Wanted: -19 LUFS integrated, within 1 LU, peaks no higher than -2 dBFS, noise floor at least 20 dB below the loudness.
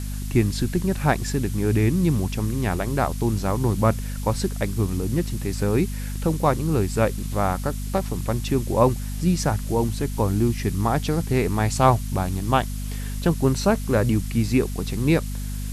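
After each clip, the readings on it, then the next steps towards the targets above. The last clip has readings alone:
hum 50 Hz; harmonics up to 250 Hz; hum level -27 dBFS; noise floor -29 dBFS; noise floor target -44 dBFS; loudness -23.5 LUFS; peak -3.0 dBFS; loudness target -19.0 LUFS
-> notches 50/100/150/200/250 Hz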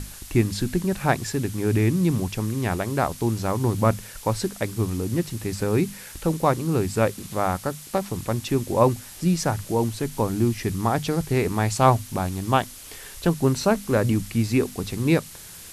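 hum none; noise floor -42 dBFS; noise floor target -44 dBFS
-> denoiser 6 dB, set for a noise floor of -42 dBFS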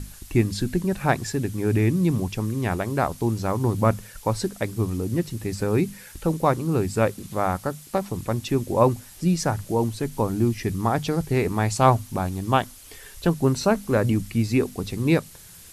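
noise floor -46 dBFS; loudness -24.0 LUFS; peak -3.5 dBFS; loudness target -19.0 LUFS
-> gain +5 dB; limiter -2 dBFS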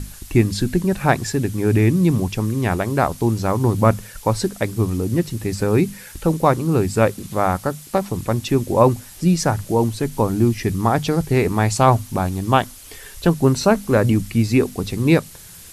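loudness -19.5 LUFS; peak -2.0 dBFS; noise floor -41 dBFS

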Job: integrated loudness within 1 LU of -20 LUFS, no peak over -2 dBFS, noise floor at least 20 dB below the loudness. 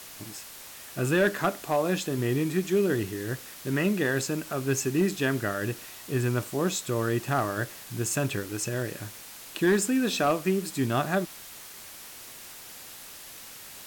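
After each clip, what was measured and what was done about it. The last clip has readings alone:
clipped 0.3%; flat tops at -16.5 dBFS; noise floor -45 dBFS; noise floor target -48 dBFS; loudness -28.0 LUFS; peak -16.5 dBFS; loudness target -20.0 LUFS
-> clip repair -16.5 dBFS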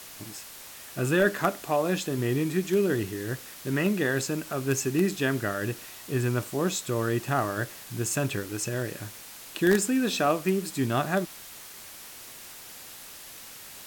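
clipped 0.0%; noise floor -45 dBFS; noise floor target -48 dBFS
-> denoiser 6 dB, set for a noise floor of -45 dBFS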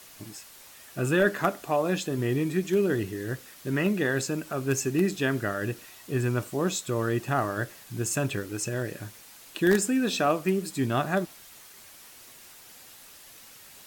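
noise floor -50 dBFS; loudness -27.5 LUFS; peak -8.0 dBFS; loudness target -20.0 LUFS
-> gain +7.5 dB; limiter -2 dBFS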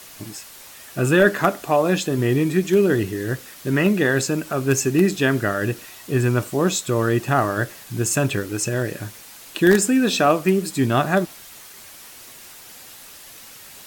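loudness -20.0 LUFS; peak -2.0 dBFS; noise floor -43 dBFS

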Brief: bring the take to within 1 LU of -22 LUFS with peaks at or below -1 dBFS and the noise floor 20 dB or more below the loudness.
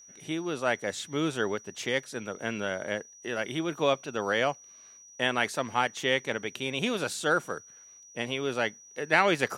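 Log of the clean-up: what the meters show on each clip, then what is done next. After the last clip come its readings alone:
steady tone 5800 Hz; tone level -50 dBFS; loudness -30.0 LUFS; peak -6.5 dBFS; loudness target -22.0 LUFS
-> notch 5800 Hz, Q 30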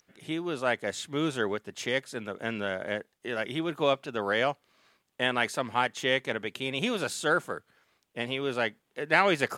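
steady tone none; loudness -30.0 LUFS; peak -6.5 dBFS; loudness target -22.0 LUFS
-> gain +8 dB; limiter -1 dBFS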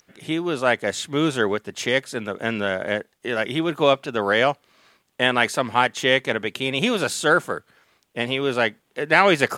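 loudness -22.0 LUFS; peak -1.0 dBFS; noise floor -68 dBFS

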